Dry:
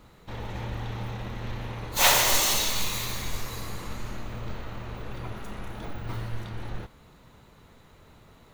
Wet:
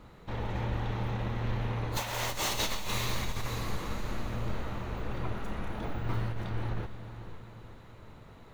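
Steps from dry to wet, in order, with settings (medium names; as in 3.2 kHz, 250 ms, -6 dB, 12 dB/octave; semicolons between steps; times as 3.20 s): treble shelf 3.9 kHz -9.5 dB; compressor with a negative ratio -30 dBFS, ratio -1; echo that smears into a reverb 514 ms, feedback 45%, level -11.5 dB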